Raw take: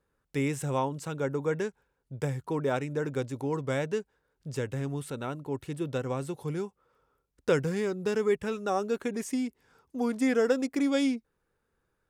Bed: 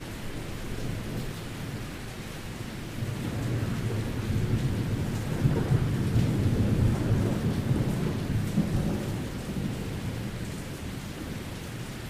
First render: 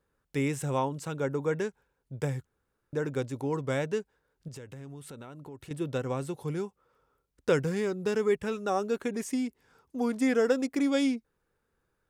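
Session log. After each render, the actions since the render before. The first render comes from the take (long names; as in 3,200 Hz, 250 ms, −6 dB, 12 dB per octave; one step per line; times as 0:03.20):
0:02.45–0:02.93: fill with room tone
0:04.48–0:05.71: downward compressor 5 to 1, threshold −42 dBFS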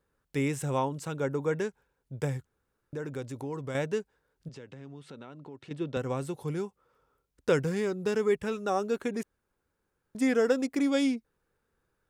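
0:02.37–0:03.75: downward compressor 2 to 1, threshold −36 dBFS
0:04.49–0:05.97: Chebyshev band-pass filter 170–4,300 Hz
0:09.23–0:10.15: fill with room tone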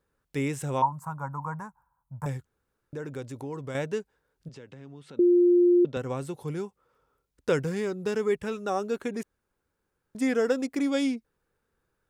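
0:00.82–0:02.26: drawn EQ curve 160 Hz 0 dB, 240 Hz −8 dB, 400 Hz −25 dB, 980 Hz +14 dB, 1,700 Hz −8 dB, 3,200 Hz −28 dB, 6,300 Hz −12 dB, 12,000 Hz 0 dB
0:05.19–0:05.85: beep over 352 Hz −16 dBFS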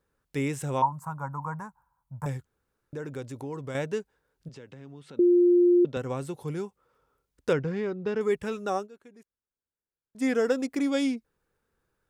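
0:07.53–0:08.21: high-frequency loss of the air 210 metres
0:08.76–0:10.25: duck −20.5 dB, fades 0.12 s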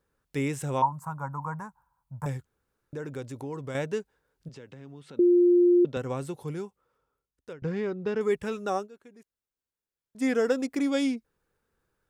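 0:06.29–0:07.62: fade out, to −23.5 dB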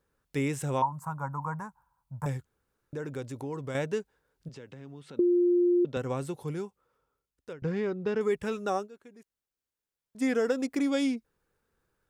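downward compressor 3 to 1, threshold −23 dBFS, peak gain reduction 4.5 dB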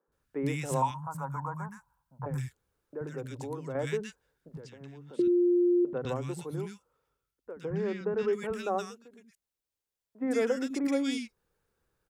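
three-band delay without the direct sound mids, lows, highs 80/120 ms, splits 240/1,500 Hz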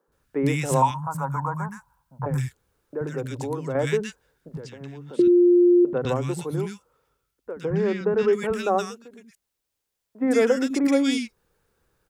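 level +8.5 dB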